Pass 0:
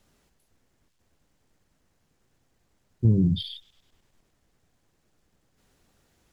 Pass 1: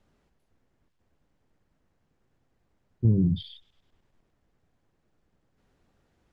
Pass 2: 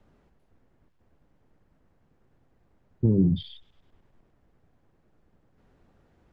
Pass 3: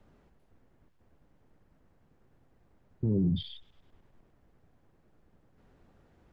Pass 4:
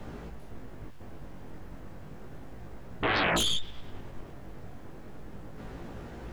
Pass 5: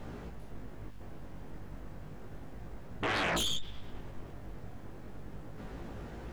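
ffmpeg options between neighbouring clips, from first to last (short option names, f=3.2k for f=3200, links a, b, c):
-af "lowpass=f=1.8k:p=1,volume=-1.5dB"
-filter_complex "[0:a]highshelf=f=2.7k:g=-11,acrossover=split=230|910[a][b][c];[a]acompressor=threshold=-30dB:ratio=6[d];[d][b][c]amix=inputs=3:normalize=0,volume=7dB"
-af "alimiter=limit=-21dB:level=0:latency=1:release=19"
-af "aeval=exprs='0.0944*sin(PI/2*10*val(0)/0.0944)':c=same,flanger=delay=17:depth=4.9:speed=0.32"
-af "asoftclip=type=tanh:threshold=-24.5dB,aeval=exprs='val(0)+0.00355*(sin(2*PI*50*n/s)+sin(2*PI*2*50*n/s)/2+sin(2*PI*3*50*n/s)/3+sin(2*PI*4*50*n/s)/4+sin(2*PI*5*50*n/s)/5)':c=same,volume=-2dB"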